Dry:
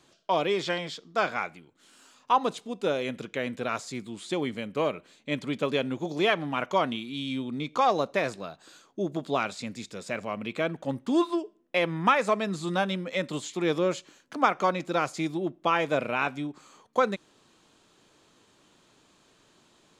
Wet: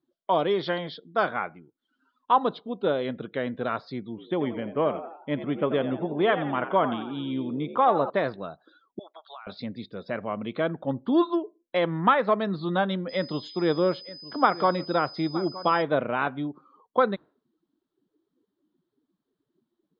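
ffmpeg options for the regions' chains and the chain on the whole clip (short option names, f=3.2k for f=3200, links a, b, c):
-filter_complex "[0:a]asettb=1/sr,asplit=3[a][b][c];[a]atrim=end=4.094[d];[b]atrim=start=4.09:end=8.1,asetpts=PTS-STARTPTS,afade=t=in:d=0.004:c=qsin,afade=t=out:st=4.006:d=0.004:c=qsin,lowpass=f=3.1k:w=0.5412,lowpass=f=3.1k:w=1.3066,asplit=7[e][f][g][h][i][j][k];[f]adelay=86,afreqshift=61,volume=-11dB[l];[g]adelay=172,afreqshift=122,volume=-16.4dB[m];[h]adelay=258,afreqshift=183,volume=-21.7dB[n];[i]adelay=344,afreqshift=244,volume=-27.1dB[o];[j]adelay=430,afreqshift=305,volume=-32.4dB[p];[k]adelay=516,afreqshift=366,volume=-37.8dB[q];[e][l][m][n][o][p][q]amix=inputs=7:normalize=0,atrim=end_sample=176841[r];[c]atrim=start=8.096[s];[d][r]acrossfade=d=0.004:c1=hsin:c2=qsin[t];[t][s]acrossfade=d=0.004:c1=qsin:c2=hsin,asettb=1/sr,asplit=3[u][v][w];[u]atrim=end=8.994[x];[v]atrim=start=8.99:end=9.47,asetpts=PTS-STARTPTS,afade=t=in:d=0.004:c=qsin,afade=t=out:st=0.476:d=0.004:c=qsin,highpass=f=840:w=0.5412,highpass=f=840:w=1.3066,acompressor=threshold=-41dB:ratio=6:attack=3.2:release=140:knee=1:detection=peak[y];[w]atrim=start=9.466[z];[x][y]acrossfade=d=0.004:c1=hsin:c2=qsin[aa];[aa][z]acrossfade=d=0.004:c1=qsin:c2=hsin,asettb=1/sr,asplit=3[ab][ac][ad];[ab]atrim=end=13.094[ae];[ac]atrim=start=13.09:end=15.82,asetpts=PTS-STARTPTS,afade=t=in:d=0.004:c=qsin,afade=t=out:st=2.726:d=0.004:c=qsin,aeval=exprs='val(0)+0.0126*sin(2*PI*5000*n/s)':c=same,aecho=1:1:918:0.15,atrim=end_sample=120393[af];[ad]atrim=start=15.816[ag];[ae][af]acrossfade=d=0.004:c1=hsin:c2=qsin[ah];[ah][ag]acrossfade=d=0.004:c1=qsin:c2=hsin,lowpass=f=4.3k:w=0.5412,lowpass=f=4.3k:w=1.3066,afftdn=nr=28:nf=-50,equalizer=f=2.5k:t=o:w=0.42:g=-13,volume=2.5dB"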